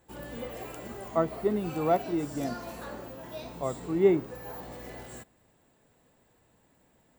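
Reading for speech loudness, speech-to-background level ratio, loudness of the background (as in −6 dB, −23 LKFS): −29.0 LKFS, 12.5 dB, −41.5 LKFS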